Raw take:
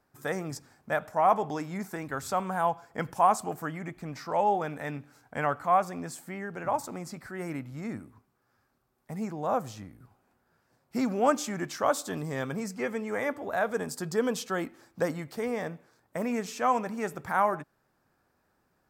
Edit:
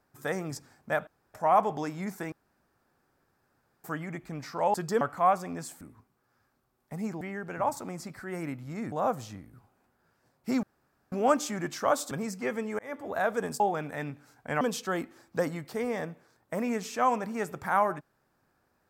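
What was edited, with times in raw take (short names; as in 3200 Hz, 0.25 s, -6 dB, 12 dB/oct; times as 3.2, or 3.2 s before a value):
1.07 insert room tone 0.27 s
2.05–3.57 room tone
4.47–5.48 swap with 13.97–14.24
7.99–9.39 move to 6.28
11.1 insert room tone 0.49 s
12.09–12.48 cut
13.16–13.45 fade in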